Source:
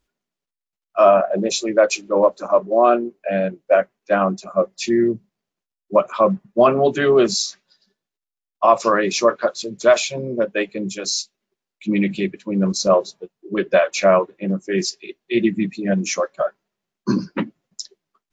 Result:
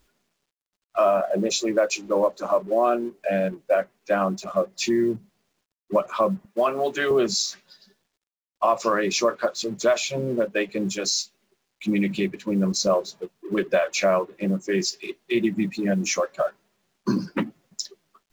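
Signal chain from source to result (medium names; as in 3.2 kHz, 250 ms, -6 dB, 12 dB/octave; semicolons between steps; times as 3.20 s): companding laws mixed up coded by mu; 6.45–7.11 s: high-pass 690 Hz 6 dB/octave; compression 2:1, threshold -22 dBFS, peak gain reduction 8 dB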